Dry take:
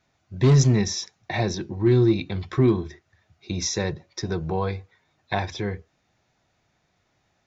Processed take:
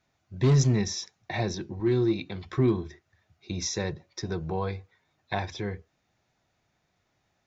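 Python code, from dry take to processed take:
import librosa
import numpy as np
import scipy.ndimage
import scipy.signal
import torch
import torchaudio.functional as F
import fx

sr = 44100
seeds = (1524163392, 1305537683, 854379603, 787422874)

y = fx.highpass(x, sr, hz=160.0, slope=6, at=(1.8, 2.46))
y = F.gain(torch.from_numpy(y), -4.5).numpy()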